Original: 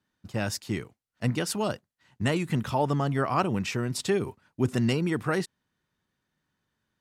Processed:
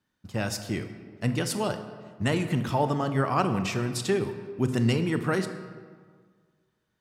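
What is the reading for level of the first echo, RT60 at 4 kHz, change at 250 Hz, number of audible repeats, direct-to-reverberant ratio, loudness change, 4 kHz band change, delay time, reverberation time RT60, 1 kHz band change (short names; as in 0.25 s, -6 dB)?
none, 1.0 s, +1.0 dB, none, 8.0 dB, +0.5 dB, +0.5 dB, none, 1.7 s, +1.0 dB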